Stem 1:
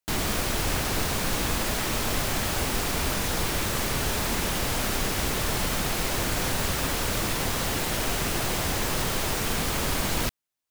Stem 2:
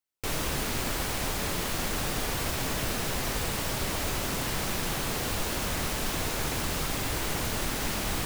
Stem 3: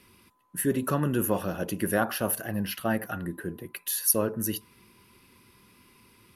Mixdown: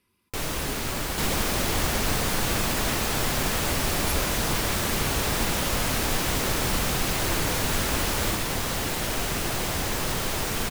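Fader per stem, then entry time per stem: -0.5, +1.0, -14.0 dB; 1.10, 0.10, 0.00 s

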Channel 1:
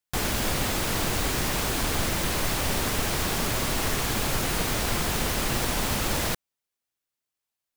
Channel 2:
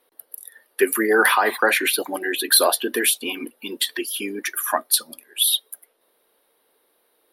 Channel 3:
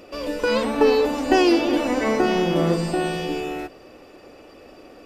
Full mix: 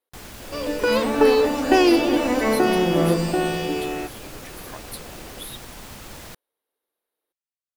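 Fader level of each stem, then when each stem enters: -13.0, -19.5, +1.0 dB; 0.00, 0.00, 0.40 s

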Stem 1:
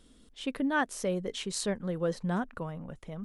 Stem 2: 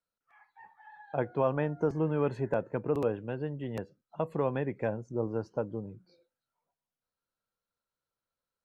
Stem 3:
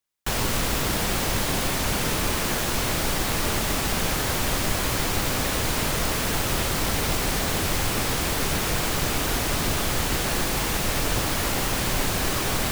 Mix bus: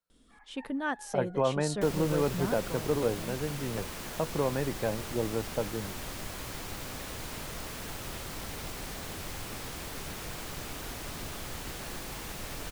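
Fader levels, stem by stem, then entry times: -4.0, +0.5, -15.0 dB; 0.10, 0.00, 1.55 s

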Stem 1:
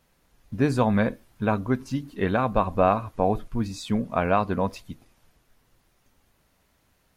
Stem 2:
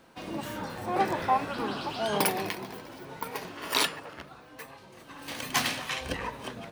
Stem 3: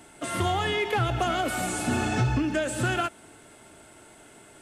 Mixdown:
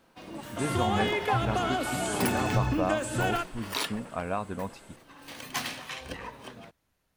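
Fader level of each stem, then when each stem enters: -9.5, -5.5, -3.0 dB; 0.00, 0.00, 0.35 s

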